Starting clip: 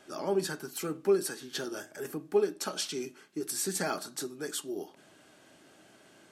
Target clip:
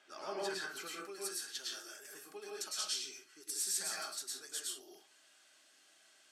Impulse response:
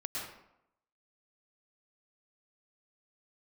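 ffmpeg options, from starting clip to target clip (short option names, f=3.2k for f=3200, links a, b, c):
-filter_complex "[0:a]asetnsamples=n=441:p=0,asendcmd='0.88 bandpass f 6500',bandpass=f=2.6k:t=q:w=0.59:csg=0[a];[1:a]atrim=start_sample=2205,afade=t=out:st=0.24:d=0.01,atrim=end_sample=11025[b];[a][b]afir=irnorm=-1:irlink=0,volume=-1dB"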